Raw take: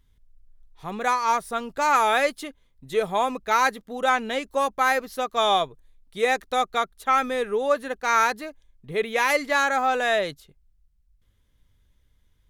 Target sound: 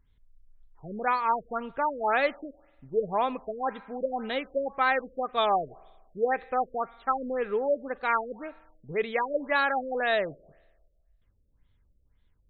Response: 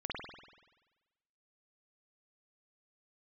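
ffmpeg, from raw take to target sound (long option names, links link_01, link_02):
-filter_complex "[0:a]asplit=2[link_01][link_02];[link_02]equalizer=frequency=73:width_type=o:width=1.1:gain=-11[link_03];[1:a]atrim=start_sample=2205[link_04];[link_03][link_04]afir=irnorm=-1:irlink=0,volume=-23.5dB[link_05];[link_01][link_05]amix=inputs=2:normalize=0,afftfilt=real='re*lt(b*sr/1024,600*pow(4500/600,0.5+0.5*sin(2*PI*1.9*pts/sr)))':imag='im*lt(b*sr/1024,600*pow(4500/600,0.5+0.5*sin(2*PI*1.9*pts/sr)))':win_size=1024:overlap=0.75,volume=-3.5dB"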